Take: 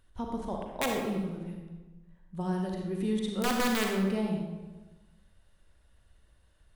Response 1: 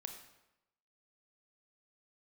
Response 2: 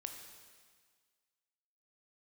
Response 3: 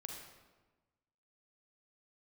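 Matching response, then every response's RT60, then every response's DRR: 3; 0.90 s, 1.7 s, 1.2 s; 4.5 dB, 4.0 dB, 1.0 dB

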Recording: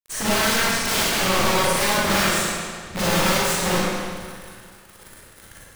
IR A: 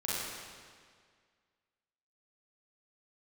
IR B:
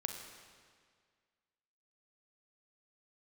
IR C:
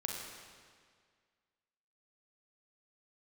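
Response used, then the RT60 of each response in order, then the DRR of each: A; 1.9 s, 1.9 s, 1.9 s; -8.5 dB, 4.0 dB, -0.5 dB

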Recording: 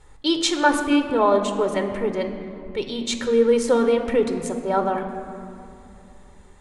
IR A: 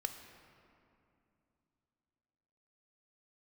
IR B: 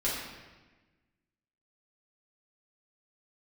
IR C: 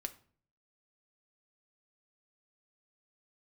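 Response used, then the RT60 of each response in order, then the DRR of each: A; 2.8 s, 1.2 s, 0.50 s; 6.5 dB, -8.5 dB, 7.0 dB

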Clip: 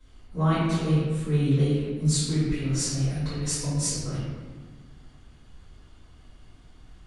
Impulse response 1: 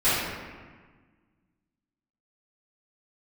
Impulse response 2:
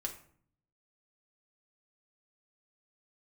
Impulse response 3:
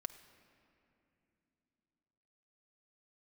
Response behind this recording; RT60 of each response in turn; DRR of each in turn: 1; 1.5 s, 0.55 s, 2.9 s; -16.5 dB, 1.0 dB, 7.5 dB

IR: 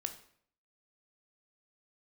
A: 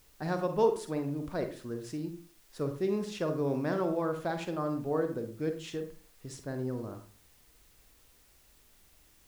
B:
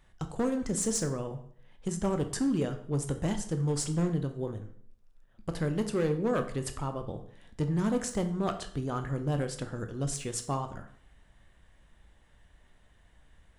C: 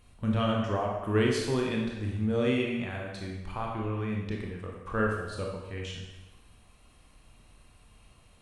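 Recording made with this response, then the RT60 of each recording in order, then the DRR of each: B; 0.45 s, 0.60 s, 1.1 s; 6.5 dB, 7.0 dB, -1.0 dB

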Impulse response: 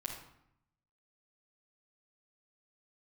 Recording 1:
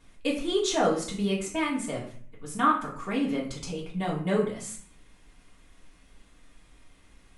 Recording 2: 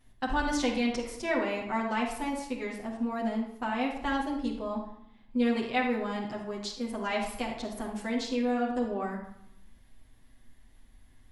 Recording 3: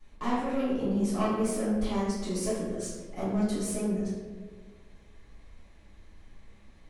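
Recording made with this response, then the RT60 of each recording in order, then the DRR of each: 2; 0.50 s, 0.75 s, 1.5 s; -6.0 dB, -4.0 dB, -12.5 dB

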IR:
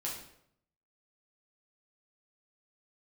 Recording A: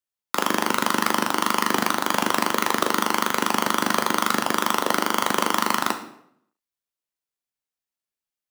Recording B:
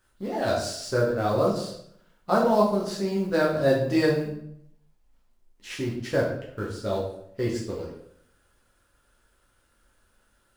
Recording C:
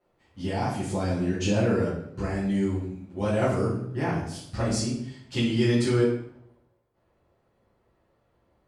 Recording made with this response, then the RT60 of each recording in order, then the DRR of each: B; 0.70 s, 0.70 s, 0.70 s; 5.5 dB, -4.5 dB, -11.0 dB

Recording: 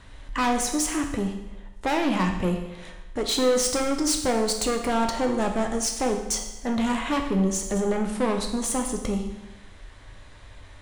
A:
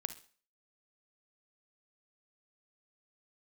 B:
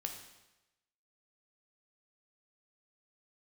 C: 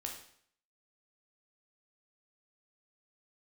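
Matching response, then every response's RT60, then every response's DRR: B; 0.40 s, 1.0 s, 0.60 s; 11.5 dB, 3.5 dB, 0.5 dB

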